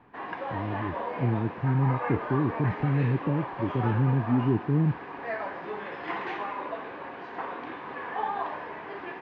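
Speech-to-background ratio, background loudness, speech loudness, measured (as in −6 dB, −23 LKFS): 7.0 dB, −35.0 LKFS, −28.0 LKFS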